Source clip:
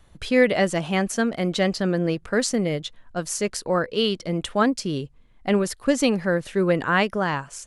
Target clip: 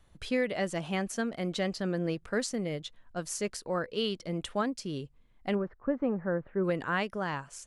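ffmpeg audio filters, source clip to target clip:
-filter_complex "[0:a]asplit=3[a][b][c];[a]afade=t=out:st=5.54:d=0.02[d];[b]lowpass=f=1.5k:w=0.5412,lowpass=f=1.5k:w=1.3066,afade=t=in:st=5.54:d=0.02,afade=t=out:st=6.63:d=0.02[e];[c]afade=t=in:st=6.63:d=0.02[f];[d][e][f]amix=inputs=3:normalize=0,alimiter=limit=-11dB:level=0:latency=1:release=499,volume=-8dB"

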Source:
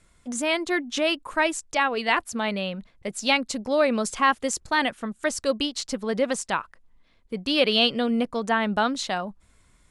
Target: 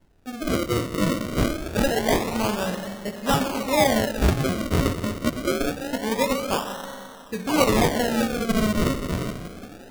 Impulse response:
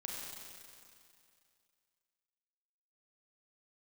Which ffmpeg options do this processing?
-filter_complex "[0:a]aresample=8000,aresample=44100,asplit=2[a][b];[1:a]atrim=start_sample=2205,adelay=23[c];[b][c]afir=irnorm=-1:irlink=0,volume=-2dB[d];[a][d]amix=inputs=2:normalize=0,acrusher=samples=36:mix=1:aa=0.000001:lfo=1:lforange=36:lforate=0.25"

